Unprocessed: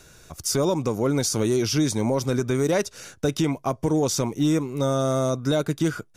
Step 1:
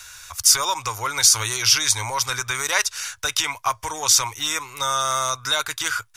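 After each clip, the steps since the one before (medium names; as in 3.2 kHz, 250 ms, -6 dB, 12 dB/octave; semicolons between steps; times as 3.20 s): FFT filter 110 Hz 0 dB, 170 Hz -29 dB, 670 Hz -4 dB, 960 Hz +11 dB, 2.1 kHz +14 dB; trim -2 dB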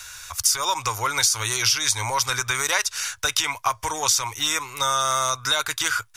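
compression 6:1, threshold -19 dBFS, peak gain reduction 9.5 dB; trim +2 dB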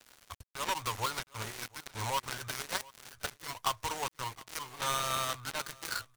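dead-time distortion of 0.21 ms; delay 716 ms -22 dB; trim -6.5 dB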